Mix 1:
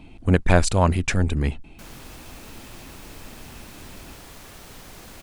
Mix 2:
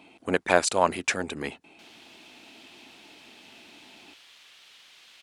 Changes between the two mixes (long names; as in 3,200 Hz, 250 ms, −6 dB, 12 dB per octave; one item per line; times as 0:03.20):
speech: add high-pass filter 390 Hz 12 dB per octave
background: add resonant band-pass 3,200 Hz, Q 2